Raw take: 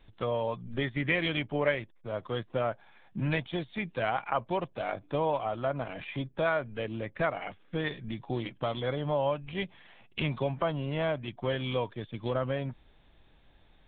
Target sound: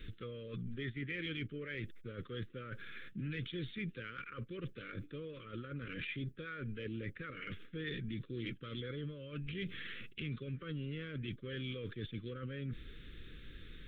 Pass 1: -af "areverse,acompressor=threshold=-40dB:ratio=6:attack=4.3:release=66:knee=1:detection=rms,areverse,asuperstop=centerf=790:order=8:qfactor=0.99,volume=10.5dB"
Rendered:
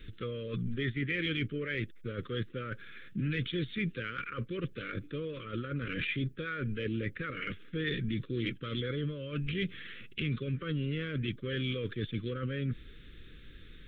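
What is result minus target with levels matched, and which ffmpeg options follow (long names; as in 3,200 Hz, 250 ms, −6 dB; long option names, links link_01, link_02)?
downward compressor: peak gain reduction −8 dB
-af "areverse,acompressor=threshold=-49.5dB:ratio=6:attack=4.3:release=66:knee=1:detection=rms,areverse,asuperstop=centerf=790:order=8:qfactor=0.99,volume=10.5dB"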